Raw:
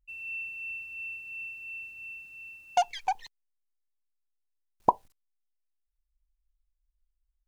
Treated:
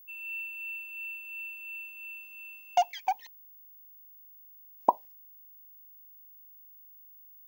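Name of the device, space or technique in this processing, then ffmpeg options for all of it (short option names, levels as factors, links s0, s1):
old television with a line whistle: -filter_complex "[0:a]highpass=f=190:w=0.5412,highpass=f=190:w=1.3066,equalizer=f=210:t=q:w=4:g=-6,equalizer=f=420:t=q:w=4:g=-9,equalizer=f=610:t=q:w=4:g=3,equalizer=f=1400:t=q:w=4:g=-9,equalizer=f=4000:t=q:w=4:g=-7,lowpass=f=6900:w=0.5412,lowpass=f=6900:w=1.3066,aeval=exprs='val(0)+0.00282*sin(2*PI*15625*n/s)':c=same,asplit=3[s0][s1][s2];[s0]afade=t=out:st=3.19:d=0.02[s3];[s1]highpass=160,afade=t=in:st=3.19:d=0.02,afade=t=out:st=4.89:d=0.02[s4];[s2]afade=t=in:st=4.89:d=0.02[s5];[s3][s4][s5]amix=inputs=3:normalize=0,equalizer=f=63:t=o:w=1.3:g=8.5"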